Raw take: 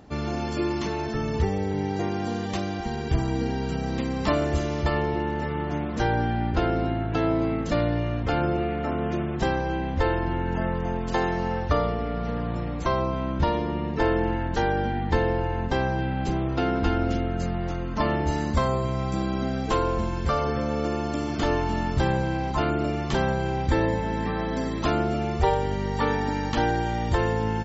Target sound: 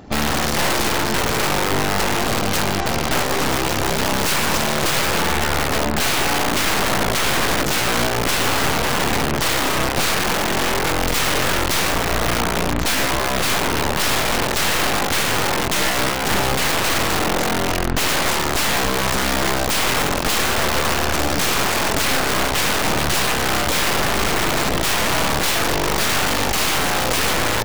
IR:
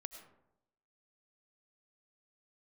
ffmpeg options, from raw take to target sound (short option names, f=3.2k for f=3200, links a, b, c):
-af "aeval=exprs='(mod(15*val(0)+1,2)-1)/15':c=same,aeval=exprs='0.0668*(cos(1*acos(clip(val(0)/0.0668,-1,1)))-cos(1*PI/2))+0.0211*(cos(4*acos(clip(val(0)/0.0668,-1,1)))-cos(4*PI/2))':c=same,volume=8.5dB"